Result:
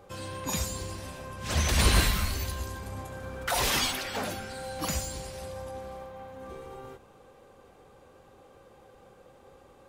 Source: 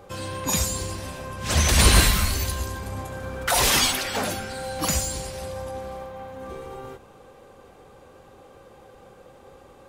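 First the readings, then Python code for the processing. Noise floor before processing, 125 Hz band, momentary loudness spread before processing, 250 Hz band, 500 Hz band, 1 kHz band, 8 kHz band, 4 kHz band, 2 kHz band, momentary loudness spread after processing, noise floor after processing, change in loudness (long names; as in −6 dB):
−50 dBFS, −6.0 dB, 20 LU, −6.0 dB, −6.0 dB, −6.0 dB, −9.0 dB, −7.0 dB, −6.5 dB, 19 LU, −56 dBFS, −7.0 dB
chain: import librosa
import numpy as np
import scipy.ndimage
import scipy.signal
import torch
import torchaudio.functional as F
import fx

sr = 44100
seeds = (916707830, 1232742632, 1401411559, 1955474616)

y = fx.dynamic_eq(x, sr, hz=9100.0, q=0.74, threshold_db=-38.0, ratio=4.0, max_db=-4)
y = F.gain(torch.from_numpy(y), -6.0).numpy()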